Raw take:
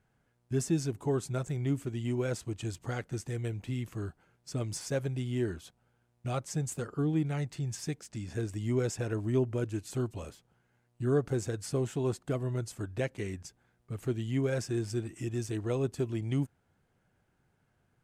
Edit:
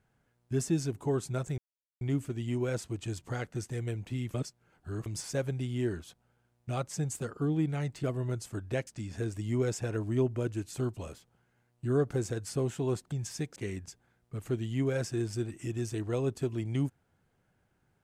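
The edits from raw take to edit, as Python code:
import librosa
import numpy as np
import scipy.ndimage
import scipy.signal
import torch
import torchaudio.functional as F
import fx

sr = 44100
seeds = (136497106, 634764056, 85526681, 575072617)

y = fx.edit(x, sr, fx.insert_silence(at_s=1.58, length_s=0.43),
    fx.reverse_span(start_s=3.91, length_s=0.72),
    fx.swap(start_s=7.6, length_s=0.44, other_s=12.29, other_length_s=0.84), tone=tone)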